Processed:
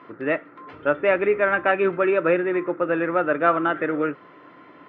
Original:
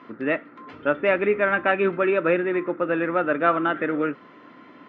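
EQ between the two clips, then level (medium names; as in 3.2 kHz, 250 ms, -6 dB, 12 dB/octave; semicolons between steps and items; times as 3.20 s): low-pass 2.5 kHz 6 dB/octave; peaking EQ 230 Hz -13 dB 0.34 oct; +2.0 dB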